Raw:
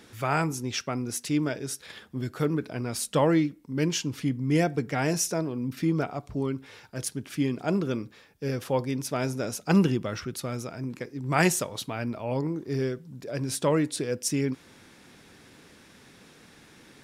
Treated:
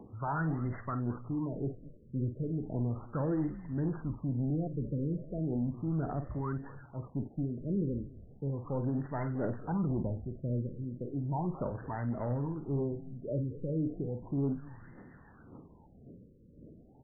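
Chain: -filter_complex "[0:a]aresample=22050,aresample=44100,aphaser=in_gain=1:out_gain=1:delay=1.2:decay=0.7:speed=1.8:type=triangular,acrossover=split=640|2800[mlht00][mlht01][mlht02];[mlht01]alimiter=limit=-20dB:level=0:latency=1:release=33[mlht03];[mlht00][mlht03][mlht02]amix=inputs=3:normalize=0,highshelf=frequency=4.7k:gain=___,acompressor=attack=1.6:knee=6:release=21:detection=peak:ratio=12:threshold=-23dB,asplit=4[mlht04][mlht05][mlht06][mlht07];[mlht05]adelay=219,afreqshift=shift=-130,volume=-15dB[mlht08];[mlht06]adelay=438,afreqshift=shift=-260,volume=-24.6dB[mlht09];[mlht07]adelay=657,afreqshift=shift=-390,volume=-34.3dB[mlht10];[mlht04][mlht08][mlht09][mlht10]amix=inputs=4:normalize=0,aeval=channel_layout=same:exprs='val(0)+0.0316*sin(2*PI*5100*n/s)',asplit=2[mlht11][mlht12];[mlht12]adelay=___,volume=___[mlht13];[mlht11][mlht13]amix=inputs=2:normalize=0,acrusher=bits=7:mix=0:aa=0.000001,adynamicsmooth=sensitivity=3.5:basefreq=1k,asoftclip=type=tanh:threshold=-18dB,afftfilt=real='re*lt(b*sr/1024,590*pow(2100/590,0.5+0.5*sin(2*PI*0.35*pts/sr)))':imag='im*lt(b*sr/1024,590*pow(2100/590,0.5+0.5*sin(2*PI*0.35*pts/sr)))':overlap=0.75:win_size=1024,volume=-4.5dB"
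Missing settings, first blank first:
4, 50, -10dB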